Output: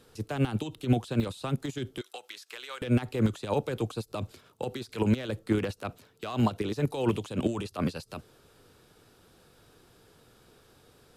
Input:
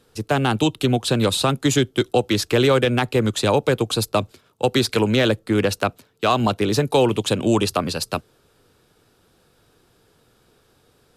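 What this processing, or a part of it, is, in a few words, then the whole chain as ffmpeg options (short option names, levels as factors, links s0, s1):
de-esser from a sidechain: -filter_complex "[0:a]asettb=1/sr,asplit=3[s0][s1][s2];[s0]atrim=end=2.014[s3];[s1]atrim=start=2.01:end=2.82,asetpts=PTS-STARTPTS,afade=t=in:d=0.004:c=qsin,afade=t=out:st=0.806:d=0.004:c=qsin,highpass=1200[s4];[s2]atrim=start=2.816[s5];[s3][s4]acrossfade=d=0.004:c1=hsin:c2=qsin[s6];[s6][s5]acrossfade=d=0.004:c1=qsin:c2=hsin,asplit=2[s7][s8];[s8]highpass=6500,apad=whole_len=492542[s9];[s7][s9]sidechaincompress=threshold=0.00398:ratio=16:attack=0.63:release=42"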